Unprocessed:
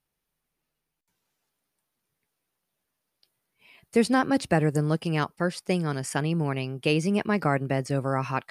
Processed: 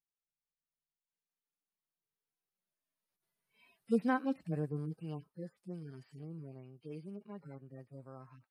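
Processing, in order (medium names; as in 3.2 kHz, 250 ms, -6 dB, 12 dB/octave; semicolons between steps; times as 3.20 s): harmonic-percussive separation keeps harmonic; Doppler pass-by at 3.49 s, 6 m/s, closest 3.4 m; trim -5.5 dB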